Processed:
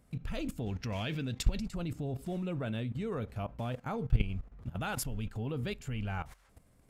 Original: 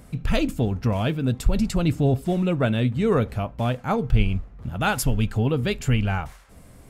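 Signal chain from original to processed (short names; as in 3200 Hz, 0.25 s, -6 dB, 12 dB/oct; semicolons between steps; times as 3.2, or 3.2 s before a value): 0.66–1.6 band shelf 3400 Hz +8.5 dB 2.3 oct; level quantiser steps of 15 dB; gain -5 dB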